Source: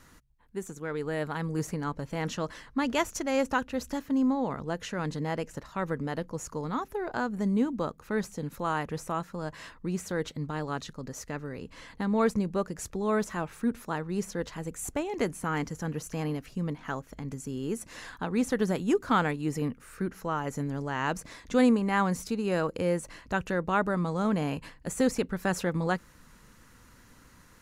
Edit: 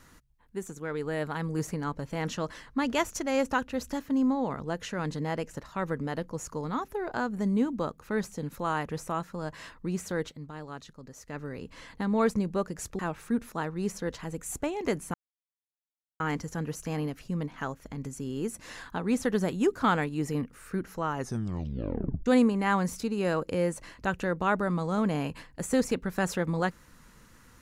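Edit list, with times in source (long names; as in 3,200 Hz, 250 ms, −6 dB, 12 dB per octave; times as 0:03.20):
0:10.19–0:11.42: duck −8 dB, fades 0.18 s
0:12.99–0:13.32: remove
0:15.47: splice in silence 1.06 s
0:20.42: tape stop 1.11 s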